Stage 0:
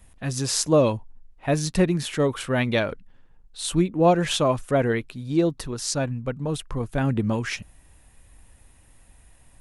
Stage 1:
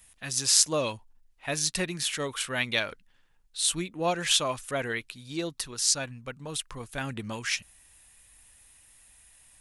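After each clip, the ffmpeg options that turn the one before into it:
-af "tiltshelf=f=1.2k:g=-9.5,volume=-4.5dB"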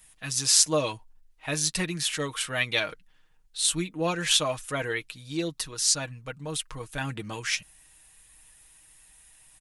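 -af "aecho=1:1:6.4:0.59"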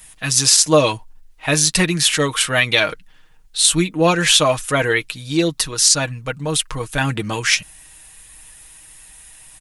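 -af "alimiter=level_in=13.5dB:limit=-1dB:release=50:level=0:latency=1,volume=-1dB"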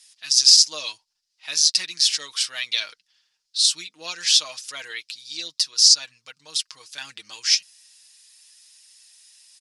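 -af "bandpass=f=5k:t=q:w=4.4:csg=0,volume=5.5dB"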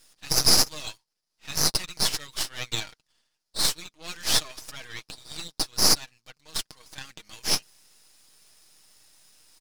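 -af "aeval=exprs='max(val(0),0)':c=same,volume=-1.5dB"

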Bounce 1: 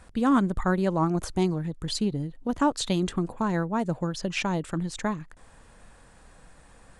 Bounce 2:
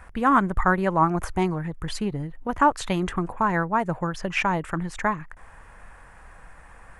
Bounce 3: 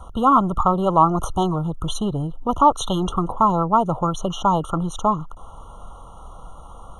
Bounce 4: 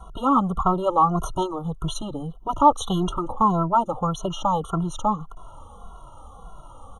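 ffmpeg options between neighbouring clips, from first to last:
-af "equalizer=f=125:t=o:w=1:g=-4,equalizer=f=250:t=o:w=1:g=-8,equalizer=f=500:t=o:w=1:g=-4,equalizer=f=1k:t=o:w=1:g=3,equalizer=f=2k:t=o:w=1:g=5,equalizer=f=4k:t=o:w=1:g=-12,equalizer=f=8k:t=o:w=1:g=-8,volume=6.5dB"
-filter_complex "[0:a]acrossover=split=660|960[a][b][c];[a]asoftclip=type=tanh:threshold=-27.5dB[d];[c]alimiter=limit=-21.5dB:level=0:latency=1:release=172[e];[d][b][e]amix=inputs=3:normalize=0,afftfilt=real='re*eq(mod(floor(b*sr/1024/1400),2),0)':imag='im*eq(mod(floor(b*sr/1024/1400),2),0)':win_size=1024:overlap=0.75,volume=8.5dB"
-filter_complex "[0:a]asplit=2[a][b];[b]adelay=2.3,afreqshift=-1.7[c];[a][c]amix=inputs=2:normalize=1"

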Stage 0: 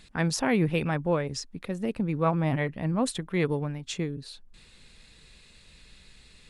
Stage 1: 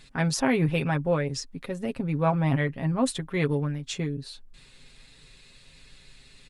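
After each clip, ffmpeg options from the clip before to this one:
-af "aecho=1:1:7.4:0.59"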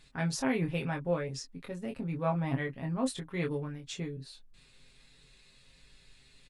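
-filter_complex "[0:a]asplit=2[a][b];[b]adelay=23,volume=-5dB[c];[a][c]amix=inputs=2:normalize=0,volume=-8.5dB"

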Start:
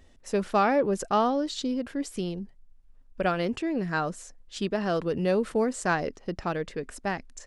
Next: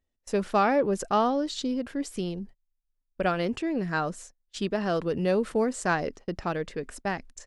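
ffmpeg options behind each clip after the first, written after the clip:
-af "agate=range=-25dB:threshold=-44dB:ratio=16:detection=peak"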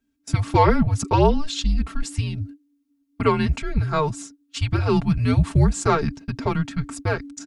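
-af "aecho=1:1:4.2:0.87,afreqshift=-300,volume=4.5dB"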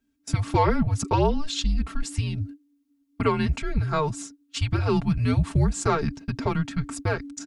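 -af "acompressor=threshold=-24dB:ratio=1.5"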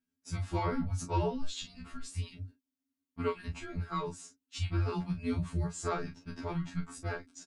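-filter_complex "[0:a]asplit=2[a][b];[b]adelay=33,volume=-8dB[c];[a][c]amix=inputs=2:normalize=0,afftfilt=real='re*2*eq(mod(b,4),0)':imag='im*2*eq(mod(b,4),0)':win_size=2048:overlap=0.75,volume=-9dB"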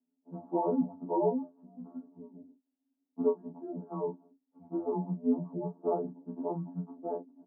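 -af "asuperpass=centerf=410:order=12:qfactor=0.59,volume=6dB"

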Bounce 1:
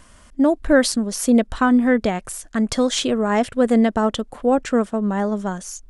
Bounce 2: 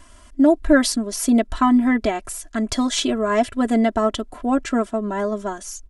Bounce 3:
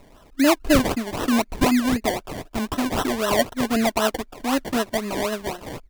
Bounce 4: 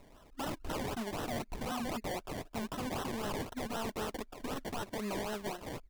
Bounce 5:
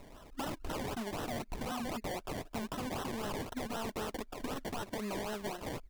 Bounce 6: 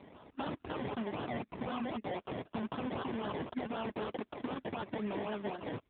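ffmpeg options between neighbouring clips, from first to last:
-af "aecho=1:1:3:0.94,volume=-2.5dB"
-af "lowshelf=f=340:g=-6,acrusher=samples=27:mix=1:aa=0.000001:lfo=1:lforange=16.2:lforate=3.9"
-af "aeval=exprs='0.0631*(abs(mod(val(0)/0.0631+3,4)-2)-1)':c=same,volume=-8dB"
-af "acompressor=threshold=-41dB:ratio=6,volume=5dB"
-af "volume=2dB" -ar 8000 -c:a libopencore_amrnb -b:a 7400

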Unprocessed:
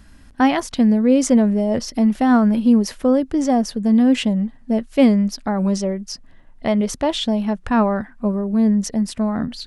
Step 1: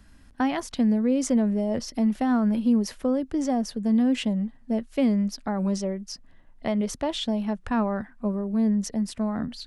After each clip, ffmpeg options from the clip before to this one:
-filter_complex "[0:a]acrossover=split=240[a][b];[b]acompressor=threshold=-16dB:ratio=6[c];[a][c]amix=inputs=2:normalize=0,volume=-6.5dB"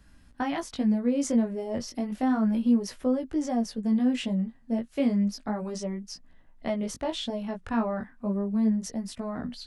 -af "flanger=delay=16:depth=5.8:speed=0.32"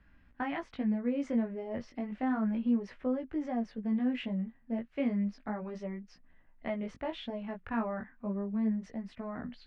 -af "lowpass=f=2.2k:t=q:w=1.7,volume=-6.5dB"

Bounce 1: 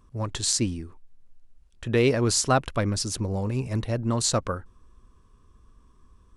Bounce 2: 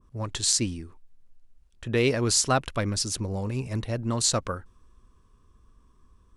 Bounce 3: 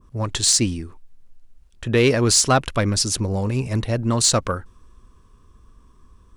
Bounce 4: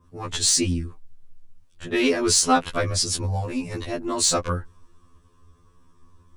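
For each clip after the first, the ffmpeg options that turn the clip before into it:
-af "adynamicequalizer=threshold=0.0126:dfrequency=1600:dqfactor=0.7:tfrequency=1600:tqfactor=0.7:attack=5:release=100:ratio=0.375:range=2:mode=boostabove:tftype=highshelf,volume=-2.5dB"
-af "asoftclip=type=tanh:threshold=-13.5dB,volume=7.5dB"
-af "afftfilt=real='re*2*eq(mod(b,4),0)':imag='im*2*eq(mod(b,4),0)':win_size=2048:overlap=0.75"

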